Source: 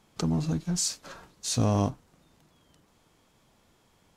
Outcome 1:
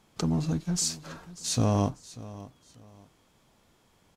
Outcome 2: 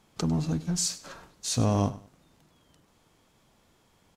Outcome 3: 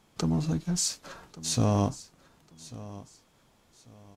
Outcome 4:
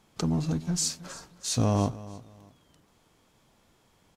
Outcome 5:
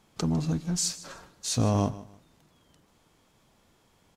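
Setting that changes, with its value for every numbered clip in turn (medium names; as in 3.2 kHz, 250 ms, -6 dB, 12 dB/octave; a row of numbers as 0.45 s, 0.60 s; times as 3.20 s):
feedback delay, time: 591 ms, 100 ms, 1143 ms, 315 ms, 153 ms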